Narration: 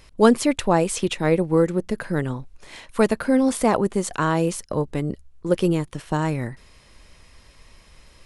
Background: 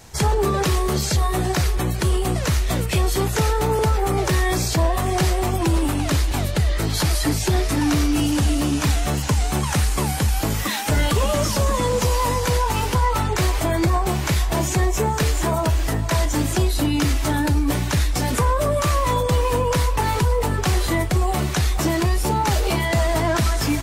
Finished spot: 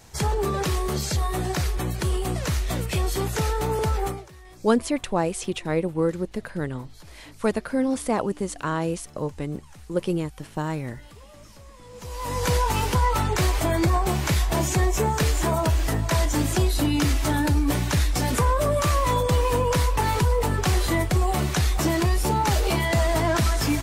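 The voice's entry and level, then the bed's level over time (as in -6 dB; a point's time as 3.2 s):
4.45 s, -5.0 dB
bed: 4.07 s -5 dB
4.3 s -28 dB
11.81 s -28 dB
12.45 s -2 dB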